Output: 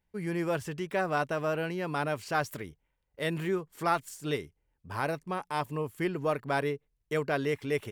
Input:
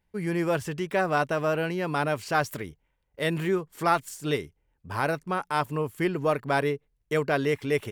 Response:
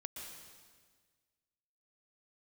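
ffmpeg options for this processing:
-filter_complex "[0:a]asettb=1/sr,asplit=3[a][b][c];[a]atrim=end=5.054[d];[b]atrim=start=5.05:end=5.86,asetpts=PTS-STARTPTS,afade=t=in:d=0.004:c=qsin,afade=t=out:st=0.806:d=0.004:c=qsin,bandreject=f=1.4k:w=6[e];[c]atrim=start=5.856[f];[d][e]acrossfade=d=0.004:c1=hsin:c2=qsin[g];[g][f]acrossfade=d=0.004:c1=qsin:c2=hsin,volume=-4.5dB"

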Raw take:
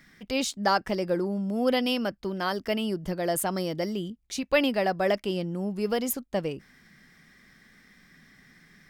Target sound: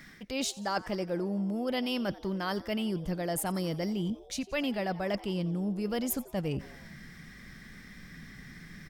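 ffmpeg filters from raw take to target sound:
-filter_complex "[0:a]asubboost=boost=2.5:cutoff=220,areverse,acompressor=threshold=-36dB:ratio=5,areverse,asplit=5[a][b][c][d][e];[b]adelay=88,afreqshift=130,volume=-19.5dB[f];[c]adelay=176,afreqshift=260,volume=-24.7dB[g];[d]adelay=264,afreqshift=390,volume=-29.9dB[h];[e]adelay=352,afreqshift=520,volume=-35.1dB[i];[a][f][g][h][i]amix=inputs=5:normalize=0,volume=5.5dB"

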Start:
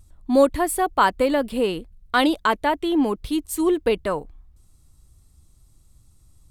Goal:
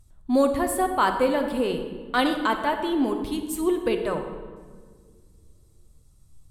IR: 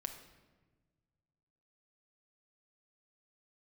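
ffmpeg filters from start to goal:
-filter_complex "[0:a]equalizer=f=170:w=4.3:g=4[a];[1:a]atrim=start_sample=2205,asetrate=32193,aresample=44100[b];[a][b]afir=irnorm=-1:irlink=0,volume=-3dB"

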